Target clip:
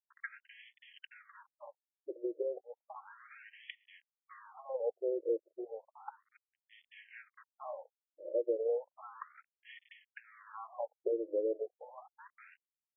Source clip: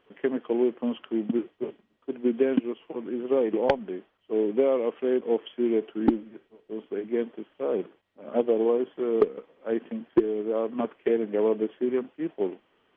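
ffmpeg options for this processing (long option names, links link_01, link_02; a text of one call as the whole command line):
ffmpeg -i in.wav -af "aecho=1:1:3.7:0.68,acompressor=threshold=-27dB:ratio=6,aresample=11025,aeval=exprs='sgn(val(0))*max(abs(val(0))-0.00531,0)':channel_layout=same,aresample=44100,afftfilt=real='re*between(b*sr/1024,440*pow(2500/440,0.5+0.5*sin(2*PI*0.33*pts/sr))/1.41,440*pow(2500/440,0.5+0.5*sin(2*PI*0.33*pts/sr))*1.41)':imag='im*between(b*sr/1024,440*pow(2500/440,0.5+0.5*sin(2*PI*0.33*pts/sr))/1.41,440*pow(2500/440,0.5+0.5*sin(2*PI*0.33*pts/sr))*1.41)':win_size=1024:overlap=0.75" out.wav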